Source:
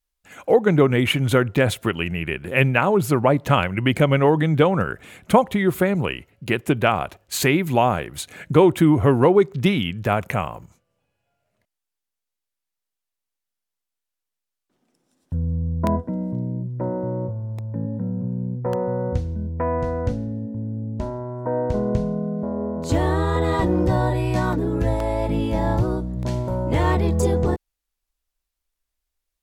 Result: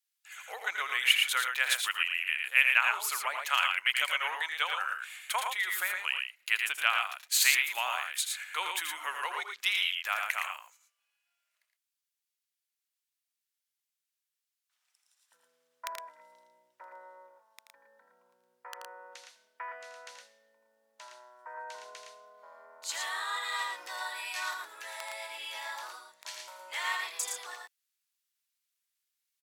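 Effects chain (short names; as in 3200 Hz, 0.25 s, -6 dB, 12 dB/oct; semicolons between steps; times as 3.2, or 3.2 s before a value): Bessel high-pass 1900 Hz, order 4; on a send: loudspeakers at several distances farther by 28 m -8 dB, 39 m -5 dB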